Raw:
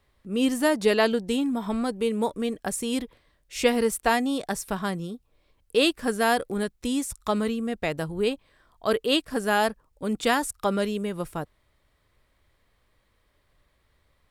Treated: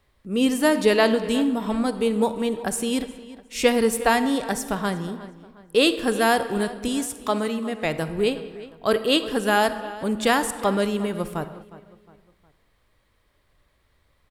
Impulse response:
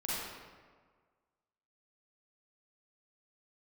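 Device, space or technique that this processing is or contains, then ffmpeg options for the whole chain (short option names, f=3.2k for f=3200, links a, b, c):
keyed gated reverb: -filter_complex "[0:a]asettb=1/sr,asplit=3[a][b][c];[a]atrim=end=6.884[d];[b]atrim=start=6.88:end=7.85,asetpts=PTS-STARTPTS,afade=t=in:d=0.004:c=qsin,afade=t=out:st=0.966:d=0.004:c=qsin,highpass=f=260:p=1[e];[c]atrim=start=7.846[f];[d][e]acrossfade=d=0.004:c1=hsin:c2=qsin[g];[g][f]acrossfade=d=0.004:c1=qsin:c2=hsin,asplit=3[h][i][j];[1:a]atrim=start_sample=2205[k];[i][k]afir=irnorm=-1:irlink=0[l];[j]apad=whole_len=630824[m];[l][m]sidechaingate=range=-33dB:threshold=-54dB:ratio=16:detection=peak,volume=-15dB[n];[h][n]amix=inputs=2:normalize=0,asplit=2[o][p];[p]adelay=360,lowpass=f=3.8k:p=1,volume=-17dB,asplit=2[q][r];[r]adelay=360,lowpass=f=3.8k:p=1,volume=0.41,asplit=2[s][t];[t]adelay=360,lowpass=f=3.8k:p=1,volume=0.41[u];[o][q][s][u]amix=inputs=4:normalize=0,volume=2dB"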